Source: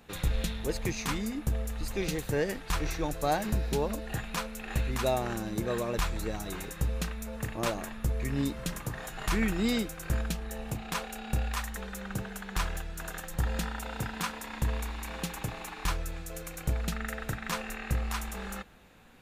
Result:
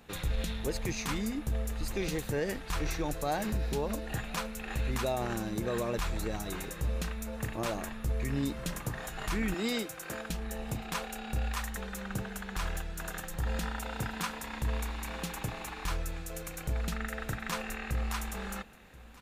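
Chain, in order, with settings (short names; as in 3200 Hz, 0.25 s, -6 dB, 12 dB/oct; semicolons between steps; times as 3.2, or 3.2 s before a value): 9.54–10.3 HPF 290 Hz 12 dB/oct; limiter -22.5 dBFS, peak gain reduction 6.5 dB; on a send: echo 1.031 s -21.5 dB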